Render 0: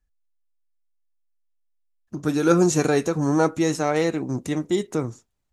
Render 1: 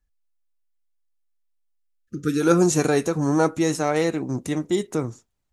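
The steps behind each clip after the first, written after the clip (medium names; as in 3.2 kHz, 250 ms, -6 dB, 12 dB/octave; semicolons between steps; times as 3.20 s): spectral selection erased 1.79–2.41 s, 540–1200 Hz; dynamic bell 10 kHz, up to +6 dB, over -52 dBFS, Q 2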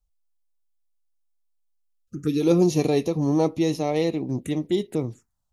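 touch-sensitive phaser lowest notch 300 Hz, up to 1.5 kHz, full sweep at -22.5 dBFS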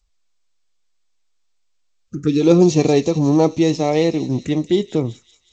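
feedback echo behind a high-pass 183 ms, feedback 55%, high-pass 4.6 kHz, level -6.5 dB; trim +6.5 dB; G.722 64 kbps 16 kHz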